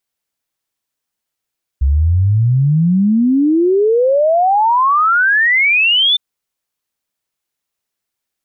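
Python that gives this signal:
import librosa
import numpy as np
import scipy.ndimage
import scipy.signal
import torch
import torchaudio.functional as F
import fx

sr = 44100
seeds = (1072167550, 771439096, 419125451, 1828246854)

y = fx.ess(sr, length_s=4.36, from_hz=65.0, to_hz=3600.0, level_db=-9.0)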